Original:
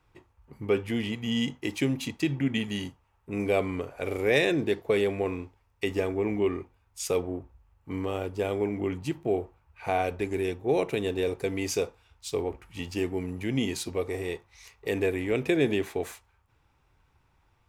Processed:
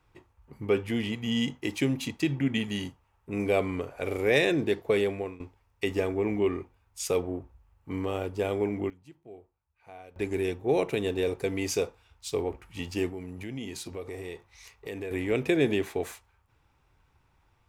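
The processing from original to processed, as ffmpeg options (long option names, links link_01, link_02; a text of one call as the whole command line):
ffmpeg -i in.wav -filter_complex "[0:a]asettb=1/sr,asplit=3[link_01][link_02][link_03];[link_01]atrim=end=13.094[link_04];[link_02]atrim=start=13.09:end=15.11,asetpts=PTS-STARTPTS,afade=type=in:duration=0.004:curve=qsin,afade=type=out:start_time=2.016:duration=0.004:curve=qsin,acompressor=threshold=-37dB:ratio=2.5:attack=3.2:release=140:knee=1:detection=peak[link_05];[link_03]atrim=start=15.106[link_06];[link_04][link_05]acrossfade=duration=0.004:curve1=hsin:curve2=qsin[link_07];[link_07][link_06]acrossfade=duration=0.004:curve1=qsin:curve2=hsin,asplit=4[link_08][link_09][link_10][link_11];[link_08]atrim=end=5.4,asetpts=PTS-STARTPTS,afade=type=out:start_time=4.88:duration=0.52:curve=qsin:silence=0.125893[link_12];[link_09]atrim=start=5.4:end=8.9,asetpts=PTS-STARTPTS,afade=type=in:duration=0.004:curve=hsin:silence=0.125893,afade=type=out:start_time=3.3:duration=0.2:curve=log:silence=0.0944061[link_13];[link_10]atrim=start=8.9:end=10.16,asetpts=PTS-STARTPTS,volume=-20.5dB[link_14];[link_11]atrim=start=10.16,asetpts=PTS-STARTPTS,afade=type=in:duration=0.2:curve=log:silence=0.0944061[link_15];[link_12][link_13][link_14][link_15]concat=n=4:v=0:a=1" out.wav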